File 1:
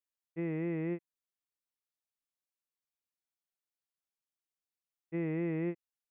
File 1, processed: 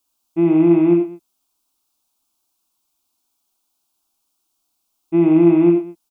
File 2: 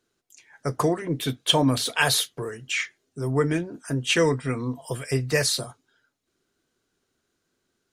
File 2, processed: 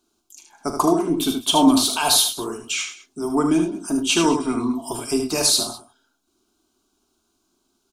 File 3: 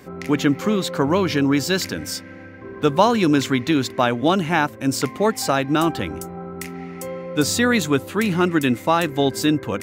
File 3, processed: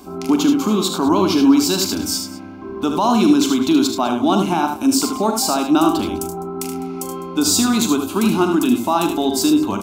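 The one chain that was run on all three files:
peak limiter -12 dBFS; static phaser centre 500 Hz, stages 6; on a send: multi-tap echo 41/76/102/204 ms -11/-6.5/-14/-19 dB; on the sum: peak normalisation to -3 dBFS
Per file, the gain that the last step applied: +22.0 dB, +8.0 dB, +7.0 dB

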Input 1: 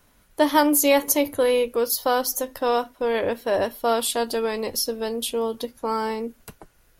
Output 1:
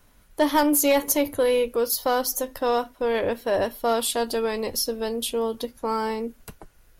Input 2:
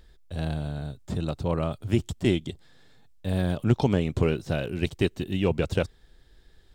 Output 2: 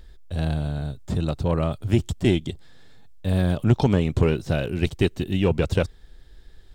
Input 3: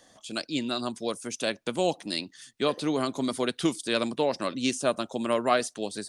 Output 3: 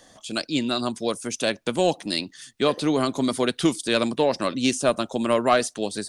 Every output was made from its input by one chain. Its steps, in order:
saturation -10.5 dBFS; bass shelf 69 Hz +7 dB; normalise loudness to -24 LUFS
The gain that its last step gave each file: -0.5 dB, +3.5 dB, +5.0 dB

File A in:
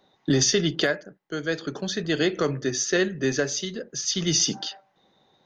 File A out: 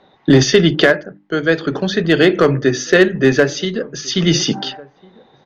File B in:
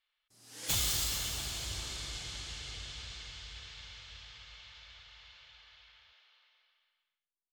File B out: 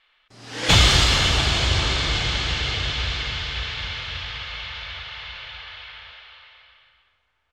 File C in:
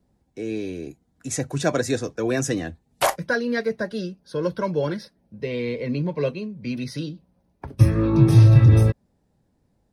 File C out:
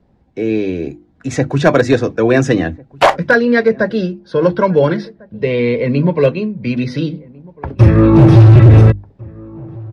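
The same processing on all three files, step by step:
low-pass 3.1 kHz 12 dB/octave; hum notches 50/100/150/200/250/300/350 Hz; hard clipper -14.5 dBFS; echo from a far wall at 240 m, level -24 dB; peak normalisation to -1.5 dBFS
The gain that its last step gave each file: +12.5 dB, +22.5 dB, +12.5 dB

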